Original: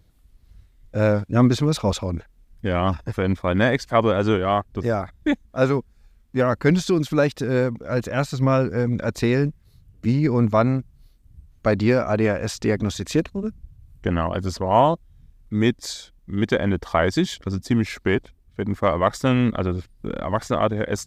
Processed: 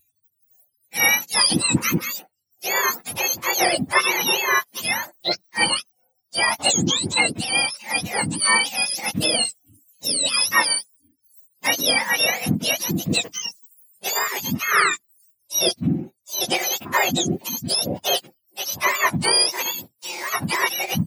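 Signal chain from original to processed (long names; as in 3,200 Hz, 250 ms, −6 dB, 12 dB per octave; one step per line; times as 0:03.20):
frequency axis turned over on the octave scale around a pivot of 1,100 Hz
noise reduction from a noise print of the clip's start 29 dB
level +4 dB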